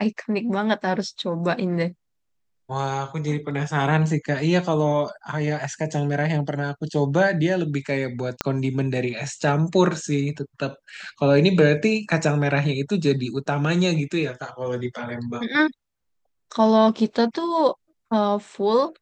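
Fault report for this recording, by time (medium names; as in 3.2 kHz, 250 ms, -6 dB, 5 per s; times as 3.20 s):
8.41 s: pop -7 dBFS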